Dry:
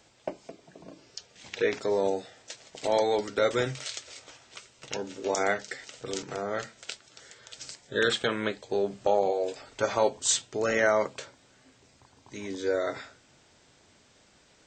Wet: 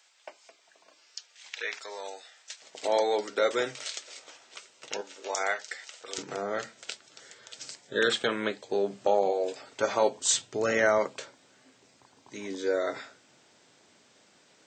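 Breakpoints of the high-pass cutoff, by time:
1.2 kHz
from 2.62 s 330 Hz
from 5.01 s 720 Hz
from 6.18 s 170 Hz
from 10.34 s 79 Hz
from 10.98 s 180 Hz

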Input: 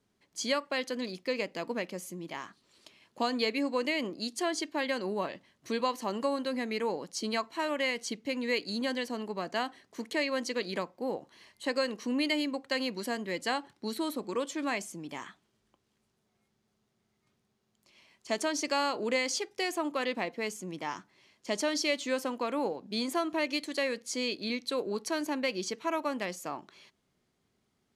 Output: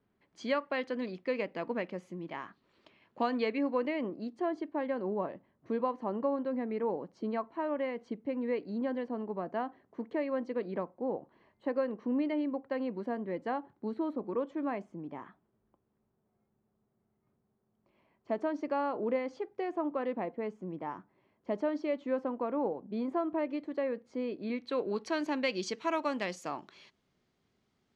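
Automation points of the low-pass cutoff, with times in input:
3.35 s 2.1 kHz
4.41 s 1 kHz
24.34 s 1 kHz
24.78 s 2.7 kHz
25.73 s 5.7 kHz

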